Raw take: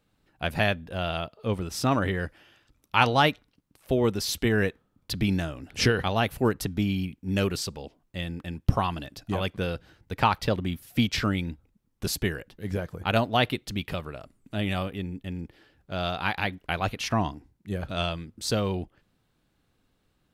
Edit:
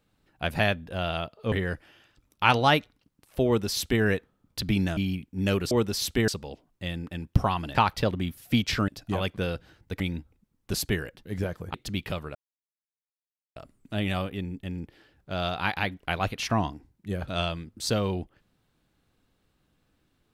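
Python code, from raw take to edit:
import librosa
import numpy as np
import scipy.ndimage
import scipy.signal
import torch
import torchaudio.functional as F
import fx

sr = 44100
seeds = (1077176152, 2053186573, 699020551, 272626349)

y = fx.edit(x, sr, fx.cut(start_s=1.52, length_s=0.52),
    fx.duplicate(start_s=3.98, length_s=0.57, to_s=7.61),
    fx.cut(start_s=5.49, length_s=1.38),
    fx.move(start_s=9.08, length_s=1.12, to_s=11.33),
    fx.cut(start_s=13.07, length_s=0.49),
    fx.insert_silence(at_s=14.17, length_s=1.21), tone=tone)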